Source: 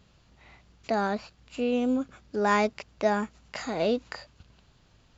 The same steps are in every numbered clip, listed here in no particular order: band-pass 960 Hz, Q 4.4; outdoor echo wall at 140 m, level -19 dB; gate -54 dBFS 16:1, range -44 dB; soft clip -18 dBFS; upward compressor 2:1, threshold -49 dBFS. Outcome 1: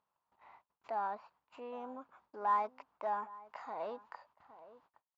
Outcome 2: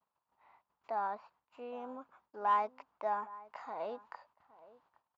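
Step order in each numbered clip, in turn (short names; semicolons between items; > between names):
soft clip > outdoor echo > gate > band-pass > upward compressor; upward compressor > outdoor echo > gate > band-pass > soft clip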